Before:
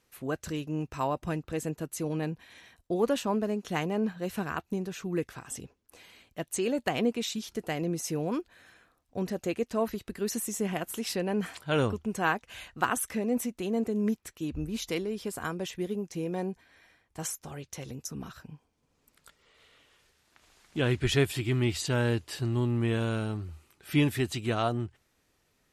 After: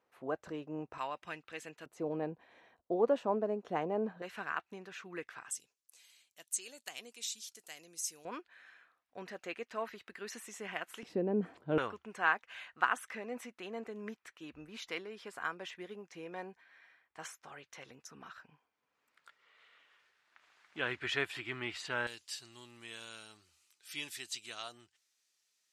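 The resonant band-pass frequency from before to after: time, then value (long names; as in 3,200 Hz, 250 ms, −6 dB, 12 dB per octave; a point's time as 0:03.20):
resonant band-pass, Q 1.1
760 Hz
from 0:00.98 2,300 Hz
from 0:01.86 630 Hz
from 0:04.22 1,700 Hz
from 0:05.51 7,800 Hz
from 0:08.25 1,800 Hz
from 0:11.03 330 Hz
from 0:11.78 1,600 Hz
from 0:22.07 6,000 Hz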